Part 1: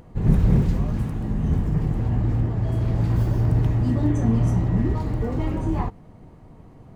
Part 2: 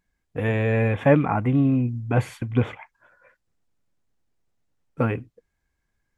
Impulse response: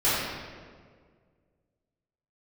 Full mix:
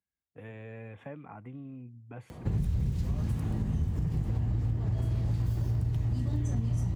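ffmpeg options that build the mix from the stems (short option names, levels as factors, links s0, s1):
-filter_complex "[0:a]adelay=2300,volume=1.41[s0];[1:a]acompressor=threshold=0.0794:ratio=3,volume=0.106[s1];[s0][s1]amix=inputs=2:normalize=0,acrossover=split=120|3000[s2][s3][s4];[s3]acompressor=threshold=0.0282:ratio=6[s5];[s2][s5][s4]amix=inputs=3:normalize=0,highpass=f=52:w=0.5412,highpass=f=52:w=1.3066,acompressor=threshold=0.0501:ratio=6"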